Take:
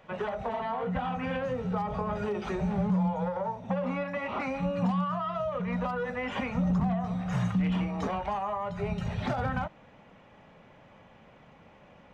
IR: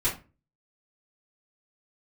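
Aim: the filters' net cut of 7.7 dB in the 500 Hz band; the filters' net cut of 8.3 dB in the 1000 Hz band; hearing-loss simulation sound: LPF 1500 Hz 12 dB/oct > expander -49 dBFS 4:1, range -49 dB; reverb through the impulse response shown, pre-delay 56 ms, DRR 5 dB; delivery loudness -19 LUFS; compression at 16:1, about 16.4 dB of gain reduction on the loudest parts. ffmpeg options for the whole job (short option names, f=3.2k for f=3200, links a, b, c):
-filter_complex "[0:a]equalizer=f=500:t=o:g=-7,equalizer=f=1k:t=o:g=-7.5,acompressor=threshold=-41dB:ratio=16,asplit=2[a][b];[1:a]atrim=start_sample=2205,adelay=56[c];[b][c]afir=irnorm=-1:irlink=0,volume=-14.5dB[d];[a][d]amix=inputs=2:normalize=0,lowpass=1.5k,agate=range=-49dB:threshold=-49dB:ratio=4,volume=25.5dB"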